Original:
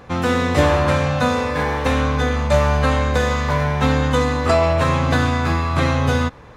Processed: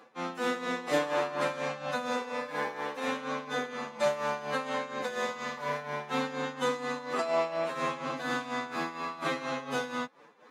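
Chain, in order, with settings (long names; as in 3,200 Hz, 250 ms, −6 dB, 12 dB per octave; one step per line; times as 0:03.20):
Bessel high-pass filter 300 Hz, order 8
phase-vocoder stretch with locked phases 1.6×
amplitude tremolo 4.2 Hz, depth 71%
level −8.5 dB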